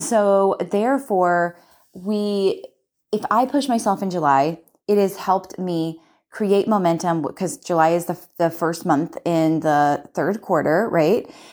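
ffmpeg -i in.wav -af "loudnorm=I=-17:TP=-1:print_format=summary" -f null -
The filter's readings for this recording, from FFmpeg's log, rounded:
Input Integrated:    -20.2 LUFS
Input True Peak:      -3.2 dBTP
Input LRA:             0.9 LU
Input Threshold:     -30.5 LUFS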